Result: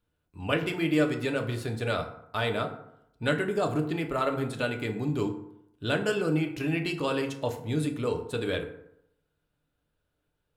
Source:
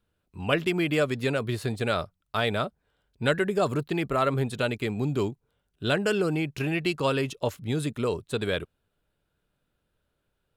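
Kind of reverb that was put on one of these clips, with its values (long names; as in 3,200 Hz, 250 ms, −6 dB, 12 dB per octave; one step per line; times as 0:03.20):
feedback delay network reverb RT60 0.77 s, low-frequency decay 1×, high-frequency decay 0.5×, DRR 3.5 dB
level −4 dB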